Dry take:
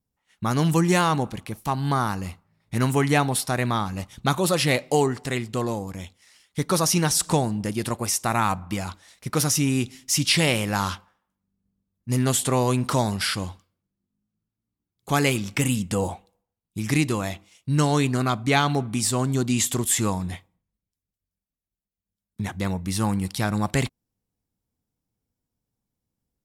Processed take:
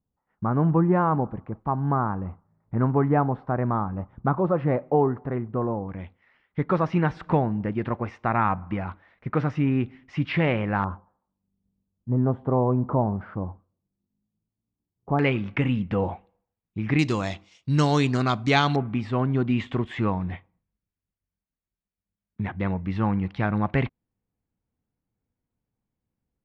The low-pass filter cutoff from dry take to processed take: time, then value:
low-pass filter 24 dB per octave
1,300 Hz
from 0:05.89 2,100 Hz
from 0:10.84 1,000 Hz
from 0:15.19 2,500 Hz
from 0:16.99 5,900 Hz
from 0:18.76 2,500 Hz

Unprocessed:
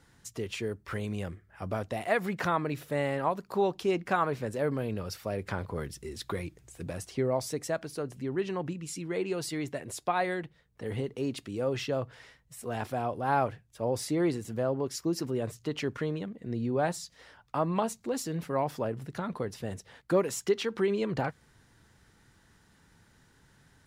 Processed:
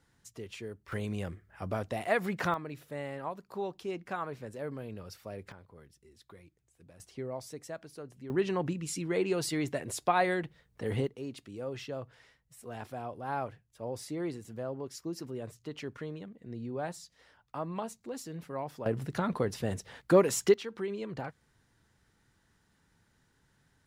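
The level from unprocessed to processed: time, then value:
−8 dB
from 0:00.92 −1 dB
from 0:02.54 −9 dB
from 0:05.52 −19.5 dB
from 0:07.00 −10 dB
from 0:08.30 +2 dB
from 0:11.07 −8 dB
from 0:18.86 +3.5 dB
from 0:20.54 −8 dB

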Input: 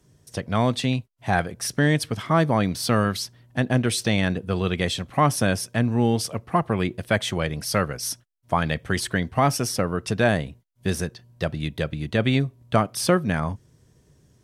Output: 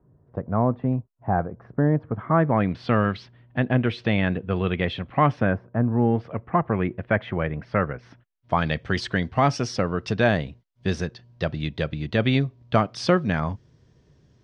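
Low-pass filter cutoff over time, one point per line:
low-pass filter 24 dB per octave
0:02.05 1,200 Hz
0:02.81 3,000 Hz
0:05.33 3,000 Hz
0:05.66 1,200 Hz
0:06.34 2,200 Hz
0:08.11 2,200 Hz
0:08.58 5,200 Hz

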